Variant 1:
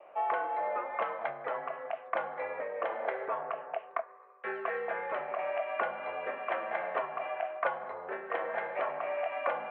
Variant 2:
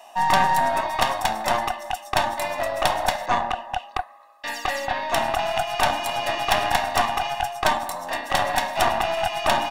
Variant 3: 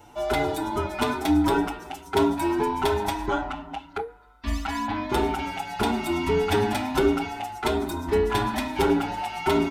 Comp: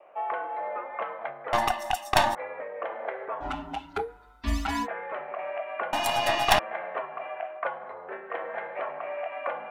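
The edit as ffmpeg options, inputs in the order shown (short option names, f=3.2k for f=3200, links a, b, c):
-filter_complex "[1:a]asplit=2[a][b];[0:a]asplit=4[c][d][e][f];[c]atrim=end=1.532[g];[a]atrim=start=1.528:end=2.352[h];[d]atrim=start=2.348:end=3.46[i];[2:a]atrim=start=3.4:end=4.88[j];[e]atrim=start=4.82:end=5.932[k];[b]atrim=start=5.928:end=6.592[l];[f]atrim=start=6.588[m];[g][h]acrossfade=d=0.004:c1=hsin:c2=hsin[n];[n][i]acrossfade=d=0.004:c1=hsin:c2=hsin[o];[o][j]acrossfade=d=0.06:c1=tri:c2=tri[p];[p][k]acrossfade=d=0.06:c1=tri:c2=tri[q];[q][l]acrossfade=d=0.004:c1=hsin:c2=hsin[r];[r][m]acrossfade=d=0.004:c1=hsin:c2=hsin"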